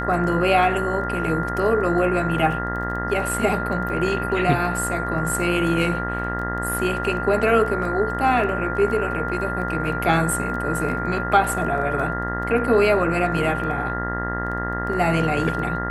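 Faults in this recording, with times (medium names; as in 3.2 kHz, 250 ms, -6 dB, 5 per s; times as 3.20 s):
buzz 60 Hz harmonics 33 -28 dBFS
crackle 10 per s -30 dBFS
whine 1.4 kHz -27 dBFS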